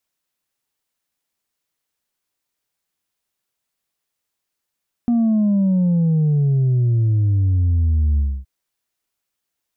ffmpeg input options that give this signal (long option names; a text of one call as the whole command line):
ffmpeg -f lavfi -i "aevalsrc='0.2*clip((3.37-t)/0.27,0,1)*tanh(1.26*sin(2*PI*240*3.37/log(65/240)*(exp(log(65/240)*t/3.37)-1)))/tanh(1.26)':duration=3.37:sample_rate=44100" out.wav